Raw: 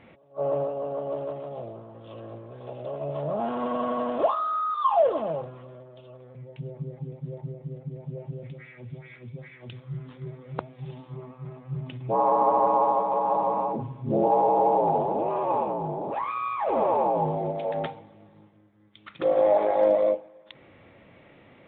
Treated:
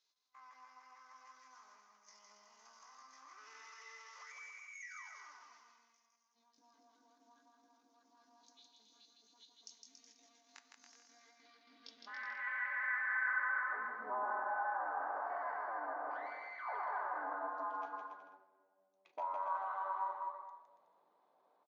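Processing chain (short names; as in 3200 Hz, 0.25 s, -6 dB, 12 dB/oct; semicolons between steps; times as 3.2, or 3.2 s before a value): HPF 87 Hz 24 dB/oct; gate -43 dBFS, range -14 dB; dynamic EQ 110 Hz, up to -4 dB, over -43 dBFS, Q 0.87; compressor 2.5:1, threshold -36 dBFS, peak gain reduction 13 dB; band-pass sweep 3400 Hz -> 410 Hz, 10.97–14.5; pitch shift +10.5 st; flange 0.51 Hz, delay 3.7 ms, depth 6.3 ms, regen -82%; on a send: bouncing-ball echo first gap 0.16 s, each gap 0.75×, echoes 5; on the sum: shoebox room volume 2300 m³, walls mixed, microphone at 0.4 m; gain +2.5 dB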